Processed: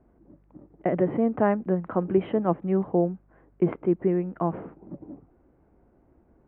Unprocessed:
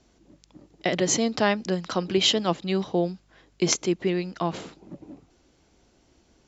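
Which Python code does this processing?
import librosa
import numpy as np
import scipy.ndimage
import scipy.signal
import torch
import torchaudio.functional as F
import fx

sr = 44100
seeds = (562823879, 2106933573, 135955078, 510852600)

y = scipy.ndimage.gaussian_filter1d(x, 6.1, mode='constant')
y = F.gain(torch.from_numpy(y), 2.0).numpy()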